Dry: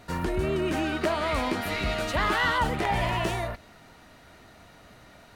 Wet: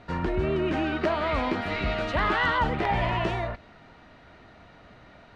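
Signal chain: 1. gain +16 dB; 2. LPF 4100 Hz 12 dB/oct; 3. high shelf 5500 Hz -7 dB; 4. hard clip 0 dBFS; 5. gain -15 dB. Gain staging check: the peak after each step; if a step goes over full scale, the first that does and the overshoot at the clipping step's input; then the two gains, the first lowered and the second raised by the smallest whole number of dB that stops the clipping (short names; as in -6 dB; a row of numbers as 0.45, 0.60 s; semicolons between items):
+4.0, +3.5, +3.0, 0.0, -15.0 dBFS; step 1, 3.0 dB; step 1 +13 dB, step 5 -12 dB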